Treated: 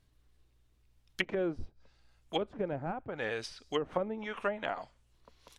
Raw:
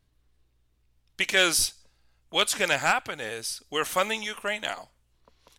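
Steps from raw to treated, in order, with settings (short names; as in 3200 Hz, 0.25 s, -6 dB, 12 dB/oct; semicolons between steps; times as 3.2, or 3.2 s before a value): treble ducked by the level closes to 400 Hz, closed at -23.5 dBFS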